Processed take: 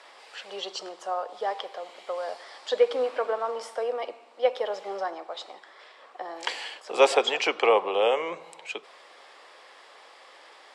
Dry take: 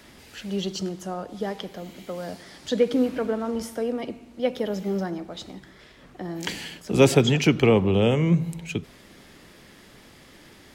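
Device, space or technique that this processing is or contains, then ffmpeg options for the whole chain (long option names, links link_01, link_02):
phone speaker on a table: -af "highpass=frequency=500:width=0.5412,highpass=frequency=500:width=1.3066,equalizer=frequency=510:width_type=q:width=4:gain=4,equalizer=frequency=790:width_type=q:width=4:gain=6,equalizer=frequency=1100:width_type=q:width=4:gain=8,equalizer=frequency=6400:width_type=q:width=4:gain=-8,lowpass=frequency=8100:width=0.5412,lowpass=frequency=8100:width=1.3066"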